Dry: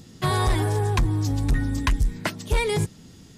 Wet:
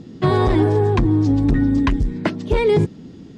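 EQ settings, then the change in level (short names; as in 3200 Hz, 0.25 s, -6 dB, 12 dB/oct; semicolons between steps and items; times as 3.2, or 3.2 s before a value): LPF 4200 Hz 12 dB/oct; bell 300 Hz +13 dB 2.1 oct; 0.0 dB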